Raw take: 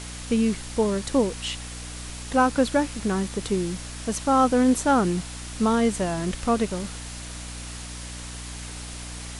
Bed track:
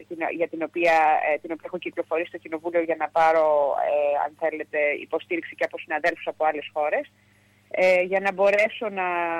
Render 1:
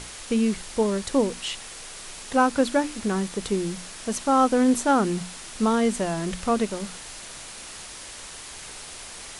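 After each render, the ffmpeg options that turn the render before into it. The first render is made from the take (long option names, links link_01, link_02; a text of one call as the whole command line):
ffmpeg -i in.wav -af "bandreject=frequency=60:width_type=h:width=6,bandreject=frequency=120:width_type=h:width=6,bandreject=frequency=180:width_type=h:width=6,bandreject=frequency=240:width_type=h:width=6,bandreject=frequency=300:width_type=h:width=6" out.wav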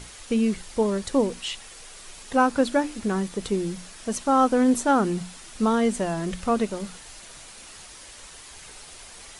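ffmpeg -i in.wav -af "afftdn=noise_reduction=6:noise_floor=-40" out.wav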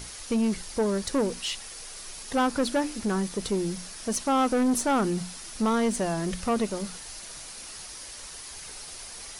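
ffmpeg -i in.wav -af "aexciter=amount=1.5:drive=6.1:freq=4500,asoftclip=type=tanh:threshold=-19dB" out.wav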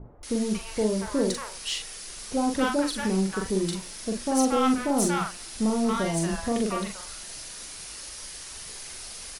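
ffmpeg -i in.wav -filter_complex "[0:a]asplit=2[link_01][link_02];[link_02]adelay=42,volume=-4dB[link_03];[link_01][link_03]amix=inputs=2:normalize=0,acrossover=split=860[link_04][link_05];[link_05]adelay=230[link_06];[link_04][link_06]amix=inputs=2:normalize=0" out.wav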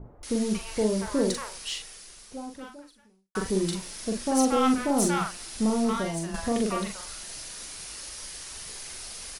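ffmpeg -i in.wav -filter_complex "[0:a]asplit=3[link_01][link_02][link_03];[link_01]atrim=end=3.35,asetpts=PTS-STARTPTS,afade=type=out:start_time=1.41:duration=1.94:curve=qua[link_04];[link_02]atrim=start=3.35:end=6.34,asetpts=PTS-STARTPTS,afade=type=in:duration=0.004:curve=hsin,afade=type=out:start_time=2.46:duration=0.53:silence=0.375837[link_05];[link_03]atrim=start=6.34,asetpts=PTS-STARTPTS,afade=type=in:duration=0.004:curve=hsin:silence=0.375837[link_06];[link_04][link_05][link_06]concat=n=3:v=0:a=1" out.wav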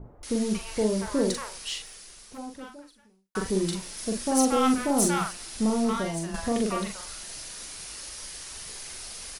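ffmpeg -i in.wav -filter_complex "[0:a]asplit=3[link_01][link_02][link_03];[link_01]afade=type=out:start_time=1.84:duration=0.02[link_04];[link_02]aeval=exprs='0.0141*(abs(mod(val(0)/0.0141+3,4)-2)-1)':channel_layout=same,afade=type=in:start_time=1.84:duration=0.02,afade=type=out:start_time=2.37:duration=0.02[link_05];[link_03]afade=type=in:start_time=2.37:duration=0.02[link_06];[link_04][link_05][link_06]amix=inputs=3:normalize=0,asettb=1/sr,asplit=3[link_07][link_08][link_09];[link_07]atrim=end=3.974[link_10];[link_08]atrim=start=3.97:end=5.33,asetpts=PTS-STARTPTS,afade=type=in:duration=0.004:curve=qsin,afade=type=out:start_time=1.356:duration=0.004:curve=qsin,highshelf=frequency=7800:gain=5.5[link_11];[link_09]atrim=start=5.326[link_12];[link_10][link_11]acrossfade=duration=0.004:curve1=hsin:curve2=qsin[link_13];[link_13][link_12]acrossfade=duration=0.004:curve1=qsin:curve2=hsin" out.wav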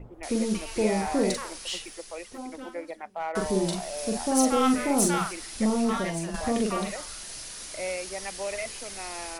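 ffmpeg -i in.wav -i bed.wav -filter_complex "[1:a]volume=-14dB[link_01];[0:a][link_01]amix=inputs=2:normalize=0" out.wav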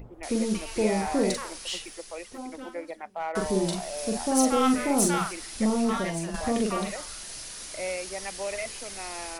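ffmpeg -i in.wav -af "acompressor=mode=upward:threshold=-46dB:ratio=2.5" out.wav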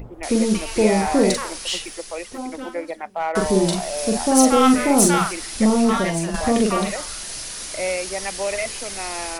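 ffmpeg -i in.wav -af "volume=8dB" out.wav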